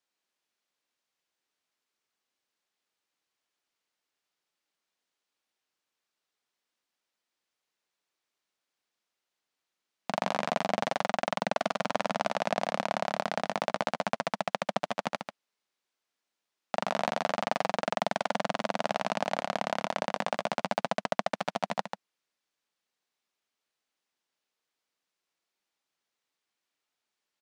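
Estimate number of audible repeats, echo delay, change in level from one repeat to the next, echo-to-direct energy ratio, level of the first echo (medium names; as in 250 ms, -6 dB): 1, 141 ms, no regular repeats, -7.5 dB, -7.5 dB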